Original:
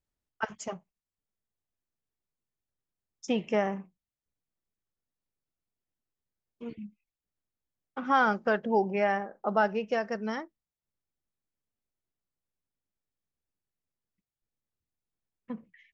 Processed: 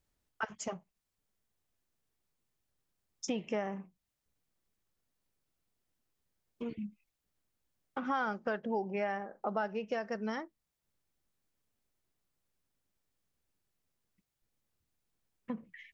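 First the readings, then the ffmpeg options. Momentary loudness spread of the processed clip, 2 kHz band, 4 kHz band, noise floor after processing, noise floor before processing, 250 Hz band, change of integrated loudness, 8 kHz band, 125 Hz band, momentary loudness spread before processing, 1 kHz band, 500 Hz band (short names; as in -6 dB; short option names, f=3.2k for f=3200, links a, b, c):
11 LU, -8.0 dB, -5.5 dB, under -85 dBFS, under -85 dBFS, -5.5 dB, -8.5 dB, n/a, -6.0 dB, 18 LU, -8.5 dB, -7.5 dB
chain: -af "acompressor=threshold=-46dB:ratio=2.5,volume=7dB"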